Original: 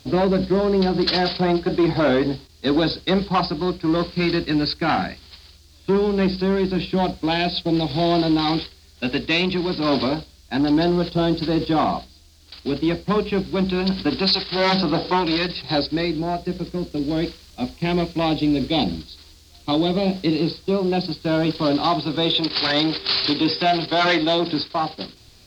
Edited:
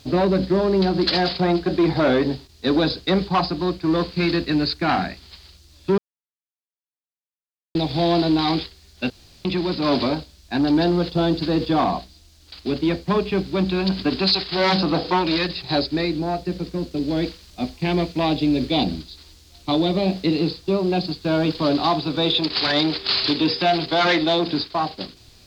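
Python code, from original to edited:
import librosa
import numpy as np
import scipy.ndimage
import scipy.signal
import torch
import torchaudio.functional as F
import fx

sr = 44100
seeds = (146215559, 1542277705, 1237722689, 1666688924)

y = fx.edit(x, sr, fx.silence(start_s=5.98, length_s=1.77),
    fx.room_tone_fill(start_s=9.1, length_s=0.35), tone=tone)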